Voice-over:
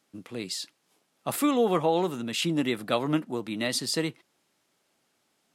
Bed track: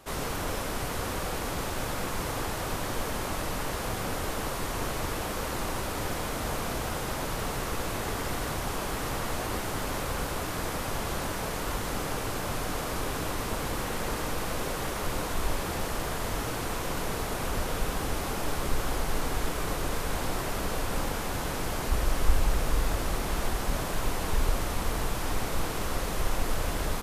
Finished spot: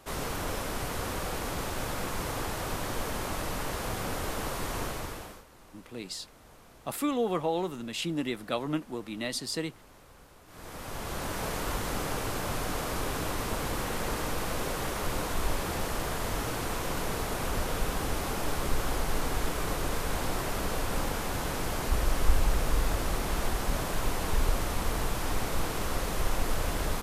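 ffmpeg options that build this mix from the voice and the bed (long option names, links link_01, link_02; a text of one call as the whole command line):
ffmpeg -i stem1.wav -i stem2.wav -filter_complex "[0:a]adelay=5600,volume=-5dB[link_01];[1:a]volume=21dB,afade=type=out:start_time=4.78:duration=0.66:silence=0.0841395,afade=type=in:start_time=10.46:duration=1:silence=0.0749894[link_02];[link_01][link_02]amix=inputs=2:normalize=0" out.wav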